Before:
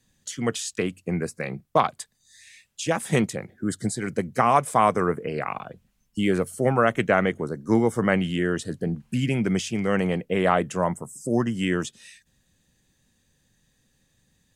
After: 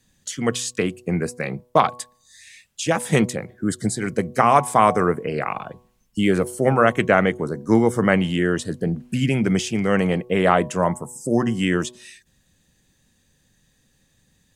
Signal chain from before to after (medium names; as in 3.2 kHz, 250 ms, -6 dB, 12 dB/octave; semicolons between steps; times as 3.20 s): de-hum 122.7 Hz, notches 9; trim +4 dB